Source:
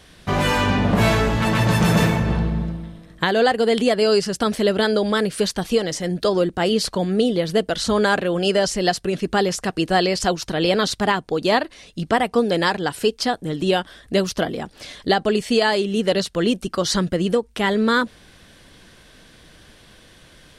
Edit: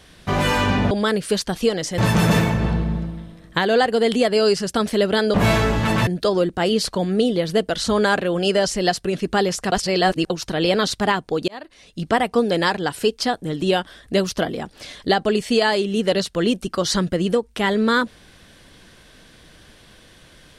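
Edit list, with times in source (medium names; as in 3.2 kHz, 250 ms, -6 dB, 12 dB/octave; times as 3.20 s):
0.91–1.64 s: swap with 5.00–6.07 s
9.72–10.30 s: reverse
11.48–12.06 s: fade in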